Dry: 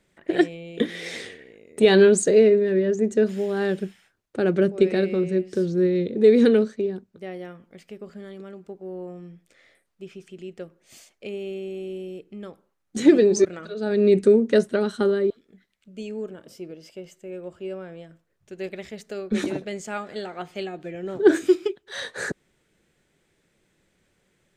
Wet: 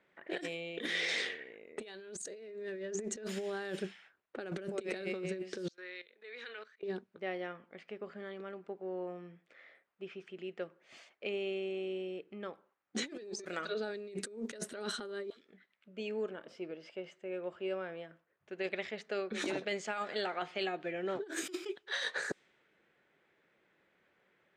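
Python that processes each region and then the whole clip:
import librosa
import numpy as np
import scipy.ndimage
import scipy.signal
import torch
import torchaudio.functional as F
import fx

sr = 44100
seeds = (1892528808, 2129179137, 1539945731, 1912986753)

y = fx.chain(x, sr, fx.highpass(hz=1500.0, slope=12),
    fx.level_steps(step_db=15),
    fx.band_widen(depth_pct=70), at=(5.68, 6.83))
y = fx.highpass(y, sr, hz=940.0, slope=6)
y = fx.env_lowpass(y, sr, base_hz=1900.0, full_db=-26.0)
y = fx.over_compress(y, sr, threshold_db=-37.0, ratio=-1.0)
y = F.gain(torch.from_numpy(y), -2.5).numpy()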